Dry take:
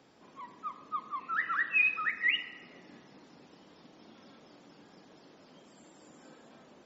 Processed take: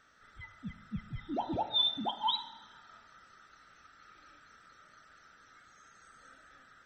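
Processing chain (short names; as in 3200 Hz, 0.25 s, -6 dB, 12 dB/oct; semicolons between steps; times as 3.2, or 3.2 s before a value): band-swap scrambler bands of 1000 Hz; gain -2.5 dB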